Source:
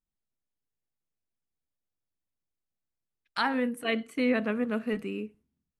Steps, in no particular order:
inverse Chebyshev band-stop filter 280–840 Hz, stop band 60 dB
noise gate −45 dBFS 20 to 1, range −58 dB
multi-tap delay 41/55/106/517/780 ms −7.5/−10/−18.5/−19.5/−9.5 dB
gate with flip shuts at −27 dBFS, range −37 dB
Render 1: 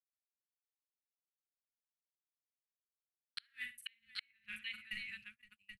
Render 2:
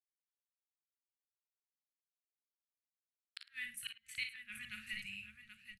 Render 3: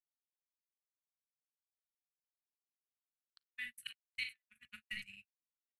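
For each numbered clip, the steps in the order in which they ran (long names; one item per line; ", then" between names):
inverse Chebyshev band-stop filter, then noise gate, then multi-tap delay, then gate with flip
noise gate, then inverse Chebyshev band-stop filter, then gate with flip, then multi-tap delay
inverse Chebyshev band-stop filter, then gate with flip, then multi-tap delay, then noise gate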